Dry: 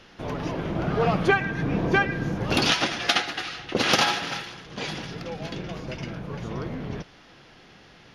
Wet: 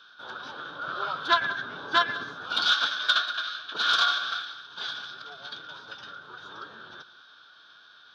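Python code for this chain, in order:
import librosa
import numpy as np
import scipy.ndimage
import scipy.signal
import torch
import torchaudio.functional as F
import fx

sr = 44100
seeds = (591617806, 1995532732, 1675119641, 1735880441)

y = fx.fold_sine(x, sr, drive_db=5, ceiling_db=-6.0)
y = fx.double_bandpass(y, sr, hz=2300.0, octaves=1.3)
y = fx.pitch_keep_formants(y, sr, semitones=-2.5)
y = y + 10.0 ** (-18.0 / 20.0) * np.pad(y, (int(185 * sr / 1000.0), 0))[:len(y)]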